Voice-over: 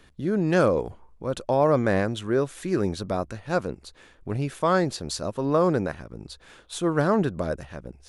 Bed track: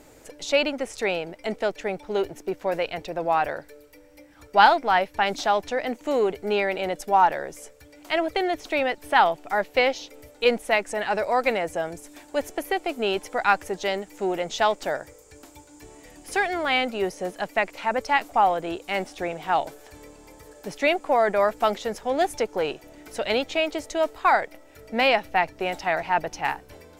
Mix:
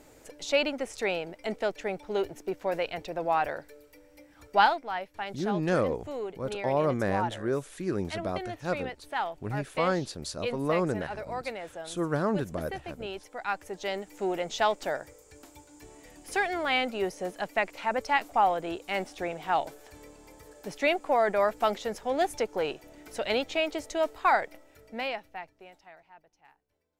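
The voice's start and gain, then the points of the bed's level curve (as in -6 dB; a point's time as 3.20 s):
5.15 s, -6.0 dB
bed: 4.57 s -4 dB
4.84 s -13 dB
13.36 s -13 dB
14.09 s -4 dB
24.55 s -4 dB
26.25 s -33.5 dB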